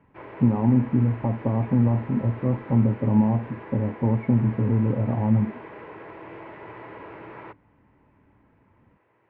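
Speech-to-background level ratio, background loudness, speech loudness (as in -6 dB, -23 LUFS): 18.5 dB, -41.5 LUFS, -23.0 LUFS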